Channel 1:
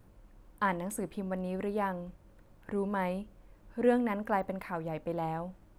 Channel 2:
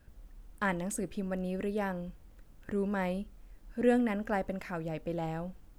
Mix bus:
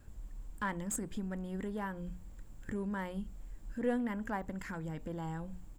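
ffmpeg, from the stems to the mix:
ffmpeg -i stem1.wav -i stem2.wav -filter_complex "[0:a]volume=-7dB,asplit=2[link_01][link_02];[1:a]equalizer=frequency=7400:width_type=o:width=0.21:gain=14.5,aeval=exprs='clip(val(0),-1,0.0316)':channel_layout=same,adelay=0.4,volume=-1dB[link_03];[link_02]apad=whole_len=255241[link_04];[link_03][link_04]sidechaincompress=threshold=-47dB:ratio=8:attack=16:release=125[link_05];[link_01][link_05]amix=inputs=2:normalize=0,lowshelf=frequency=130:gain=6,bandreject=frequency=60:width_type=h:width=6,bandreject=frequency=120:width_type=h:width=6,bandreject=frequency=180:width_type=h:width=6" out.wav

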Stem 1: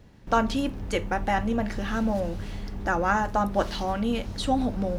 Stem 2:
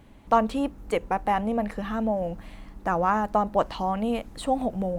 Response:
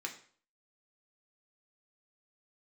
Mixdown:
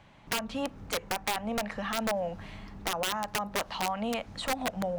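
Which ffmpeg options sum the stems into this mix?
-filter_complex "[0:a]volume=-13.5dB[link_01];[1:a]acrossover=split=570 7200:gain=0.0891 1 0.0631[link_02][link_03][link_04];[link_02][link_03][link_04]amix=inputs=3:normalize=0,acompressor=threshold=-29dB:ratio=12,volume=2dB,asplit=3[link_05][link_06][link_07];[link_06]volume=-22dB[link_08];[link_07]apad=whole_len=219817[link_09];[link_01][link_09]sidechaincompress=threshold=-38dB:ratio=4:attack=5.9:release=214[link_10];[2:a]atrim=start_sample=2205[link_11];[link_08][link_11]afir=irnorm=-1:irlink=0[link_12];[link_10][link_05][link_12]amix=inputs=3:normalize=0,equalizer=frequency=160:width=0.97:gain=8.5,aeval=exprs='(mod(13.3*val(0)+1,2)-1)/13.3':channel_layout=same"

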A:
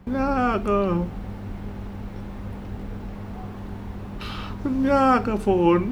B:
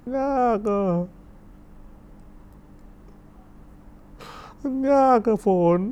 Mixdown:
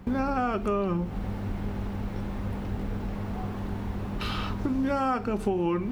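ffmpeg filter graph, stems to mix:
ffmpeg -i stem1.wav -i stem2.wav -filter_complex "[0:a]volume=2dB[link_01];[1:a]volume=-10.5dB[link_02];[link_01][link_02]amix=inputs=2:normalize=0,acompressor=threshold=-24dB:ratio=6" out.wav

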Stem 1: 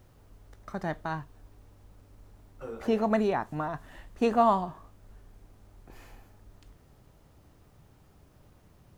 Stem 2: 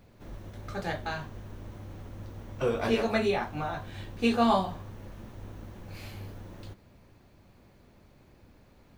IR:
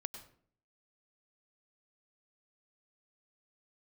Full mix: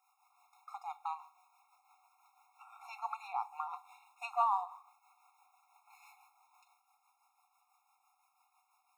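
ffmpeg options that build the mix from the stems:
-filter_complex "[0:a]volume=-3.5dB,asplit=3[link_01][link_02][link_03];[link_02]volume=-9dB[link_04];[1:a]acompressor=threshold=-41dB:ratio=2,alimiter=level_in=7dB:limit=-24dB:level=0:latency=1,volume=-7dB,volume=-7dB[link_05];[link_03]apad=whole_len=395902[link_06];[link_05][link_06]sidechaingate=range=-33dB:threshold=-58dB:ratio=16:detection=peak[link_07];[2:a]atrim=start_sample=2205[link_08];[link_04][link_08]afir=irnorm=-1:irlink=0[link_09];[link_01][link_07][link_09]amix=inputs=3:normalize=0,equalizer=frequency=4000:width_type=o:width=0.61:gain=-7,acrossover=split=440[link_10][link_11];[link_10]aeval=exprs='val(0)*(1-0.5/2+0.5/2*cos(2*PI*6*n/s))':channel_layout=same[link_12];[link_11]aeval=exprs='val(0)*(1-0.5/2-0.5/2*cos(2*PI*6*n/s))':channel_layout=same[link_13];[link_12][link_13]amix=inputs=2:normalize=0,afftfilt=real='re*eq(mod(floor(b*sr/1024/710),2),1)':imag='im*eq(mod(floor(b*sr/1024/710),2),1)':win_size=1024:overlap=0.75"

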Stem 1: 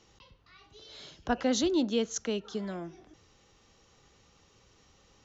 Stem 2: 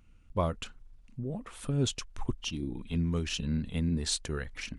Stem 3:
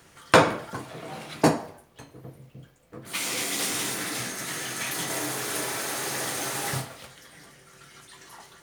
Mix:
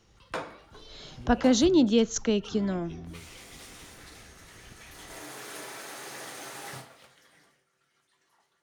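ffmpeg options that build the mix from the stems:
ffmpeg -i stem1.wav -i stem2.wav -i stem3.wav -filter_complex "[0:a]lowshelf=frequency=220:gain=8.5,dynaudnorm=framelen=640:gausssize=3:maxgain=7.5dB,volume=-3.5dB,asplit=2[link_01][link_02];[1:a]highshelf=frequency=4200:gain=-11.5,alimiter=level_in=1.5dB:limit=-24dB:level=0:latency=1:release=127,volume=-1.5dB,acompressor=threshold=-41dB:ratio=6,volume=-1dB[link_03];[2:a]lowshelf=frequency=160:gain=-10,highshelf=frequency=6700:gain=-6.5,volume=-9dB,afade=type=in:start_time=4.88:duration=0.5:silence=0.375837,afade=type=out:start_time=7.36:duration=0.32:silence=0.251189[link_04];[link_02]apad=whole_len=210926[link_05];[link_03][link_05]sidechaingate=range=-33dB:threshold=-51dB:ratio=16:detection=peak[link_06];[link_01][link_06][link_04]amix=inputs=3:normalize=0" out.wav

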